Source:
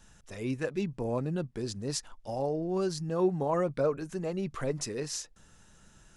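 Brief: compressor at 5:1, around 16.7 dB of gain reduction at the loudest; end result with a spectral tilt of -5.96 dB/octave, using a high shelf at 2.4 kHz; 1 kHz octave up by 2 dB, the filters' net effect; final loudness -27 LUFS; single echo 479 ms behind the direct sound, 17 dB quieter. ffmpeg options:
-af "equalizer=f=1000:t=o:g=4,highshelf=f=2400:g=-8.5,acompressor=threshold=0.00794:ratio=5,aecho=1:1:479:0.141,volume=7.94"

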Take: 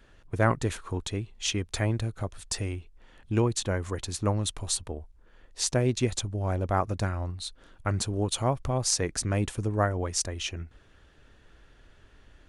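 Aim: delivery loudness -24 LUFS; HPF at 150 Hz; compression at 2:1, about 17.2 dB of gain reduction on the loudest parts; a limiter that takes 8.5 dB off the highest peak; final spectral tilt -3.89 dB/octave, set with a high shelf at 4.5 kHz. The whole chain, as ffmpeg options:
-af "highpass=150,highshelf=f=4500:g=-5,acompressor=threshold=0.00224:ratio=2,volume=15.8,alimiter=limit=0.316:level=0:latency=1"

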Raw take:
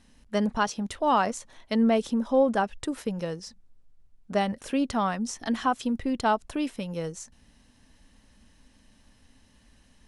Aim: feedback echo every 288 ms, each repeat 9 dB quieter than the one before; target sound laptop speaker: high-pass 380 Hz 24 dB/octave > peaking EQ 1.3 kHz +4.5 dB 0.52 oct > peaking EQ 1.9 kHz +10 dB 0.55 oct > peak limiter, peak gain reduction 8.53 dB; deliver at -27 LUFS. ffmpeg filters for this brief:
-af "highpass=f=380:w=0.5412,highpass=f=380:w=1.3066,equalizer=f=1300:t=o:w=0.52:g=4.5,equalizer=f=1900:t=o:w=0.55:g=10,aecho=1:1:288|576|864|1152:0.355|0.124|0.0435|0.0152,volume=1.41,alimiter=limit=0.224:level=0:latency=1"

